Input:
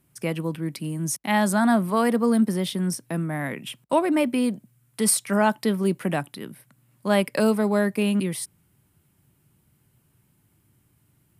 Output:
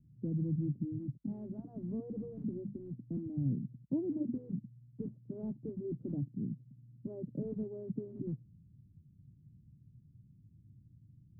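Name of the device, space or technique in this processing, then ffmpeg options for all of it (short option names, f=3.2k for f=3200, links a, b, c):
the neighbour's flat through the wall: -filter_complex "[0:a]asettb=1/sr,asplit=3[a][b][c];[a]atrim=end=2.234[d];[b]atrim=start=2.23:end=2.76,asetpts=PTS-STARTPTS,afade=t=in:d=0.004:c=qsin,afade=t=out:st=0.526:d=0.004:c=qsin,bandreject=f=50:t=h:w=6,bandreject=f=100:t=h:w=6,bandreject=f=150:t=h:w=6,bandreject=f=200:t=h:w=6,bandreject=f=250:t=h:w=6[e];[c]atrim=start=2.756[f];[d][e]acrossfade=d=0.004:c1=hsin:c2=qsin[g];[g][f]acrossfade=d=0.004:c1=qsin:c2=hsin,lowpass=f=230:w=0.5412,lowpass=f=230:w=1.3066,equalizer=f=110:t=o:w=0.88:g=3,afftfilt=real='re*lt(hypot(re,im),0.316)':imag='im*lt(hypot(re,im),0.316)':win_size=1024:overlap=0.75,volume=3.5dB"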